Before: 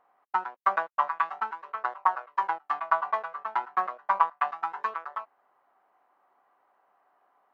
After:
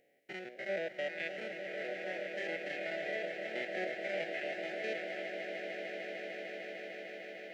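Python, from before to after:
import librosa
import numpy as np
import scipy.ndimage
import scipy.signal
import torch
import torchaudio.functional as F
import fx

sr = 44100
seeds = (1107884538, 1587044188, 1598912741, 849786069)

y = fx.spec_steps(x, sr, hold_ms=100)
y = scipy.signal.sosfilt(scipy.signal.cheby1(3, 1.0, [560.0, 2000.0], 'bandstop', fs=sr, output='sos'), y)
y = fx.echo_swell(y, sr, ms=150, loudest=8, wet_db=-11.0)
y = y * 10.0 ** (8.5 / 20.0)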